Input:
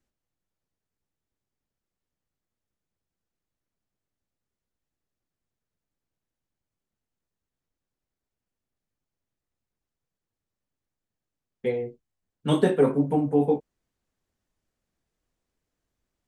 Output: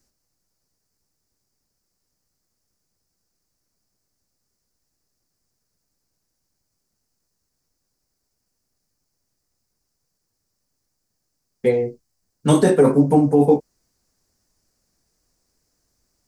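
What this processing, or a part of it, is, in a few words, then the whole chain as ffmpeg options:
over-bright horn tweeter: -af "highshelf=f=4.1k:t=q:w=3:g=6.5,alimiter=limit=-14dB:level=0:latency=1:release=17,volume=9dB"

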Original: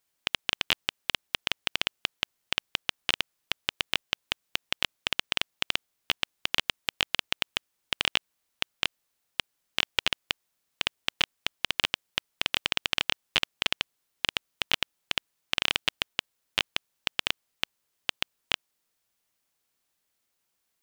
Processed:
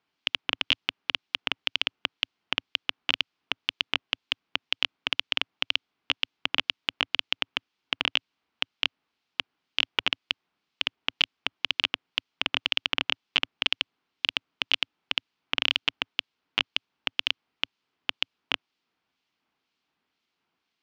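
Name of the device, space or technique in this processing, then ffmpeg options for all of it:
guitar amplifier with harmonic tremolo: -filter_complex "[0:a]acrossover=split=2300[a][b];[a]aeval=exprs='val(0)*(1-0.5/2+0.5/2*cos(2*PI*2*n/s))':c=same[c];[b]aeval=exprs='val(0)*(1-0.5/2-0.5/2*cos(2*PI*2*n/s))':c=same[d];[c][d]amix=inputs=2:normalize=0,asoftclip=type=tanh:threshold=-12dB,highpass=89,equalizer=f=110:t=q:w=4:g=-8,equalizer=f=270:t=q:w=4:g=4,equalizer=f=560:t=q:w=4:g=-8,equalizer=f=1.8k:t=q:w=4:g=-4,equalizer=f=3.8k:t=q:w=4:g=-3,lowpass=f=4.2k:w=0.5412,lowpass=f=4.2k:w=1.3066,volume=8dB"

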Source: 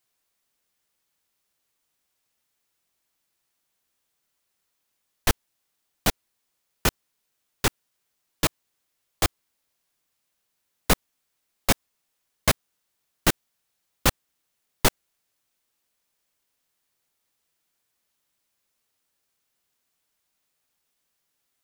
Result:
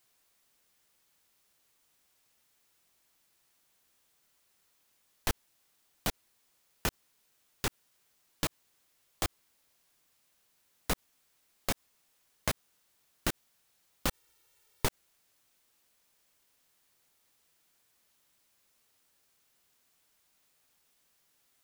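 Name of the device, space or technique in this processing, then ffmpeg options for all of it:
de-esser from a sidechain: -filter_complex "[0:a]asplit=2[a][b];[b]highpass=5.4k,apad=whole_len=953989[c];[a][c]sidechaincompress=threshold=-41dB:ratio=4:attack=3.1:release=42,asettb=1/sr,asplit=3[d][e][f];[d]atrim=end=14.094[g];[e]atrim=start=14.09:end=14.85,asetpts=PTS-STARTPTS,afade=t=in:d=0.004:c=qsin,afade=t=out:st=0.756:d=0.004:c=qsin,aecho=1:1:2.2:0.97,atrim=end_sample=33516[h];[f]atrim=start=14.846[i];[g][h]acrossfade=d=0.004:c1=hsin:c2=qsin[j];[j][i]acrossfade=d=0.004:c1=qsin:c2=hsin,volume=5dB"

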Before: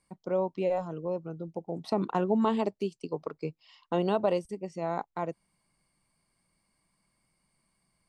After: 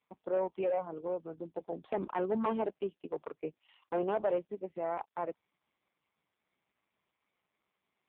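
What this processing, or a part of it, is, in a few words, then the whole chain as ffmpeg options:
telephone: -af "highpass=300,lowpass=3.2k,asoftclip=type=tanh:threshold=-23dB" -ar 8000 -c:a libopencore_amrnb -b:a 4750

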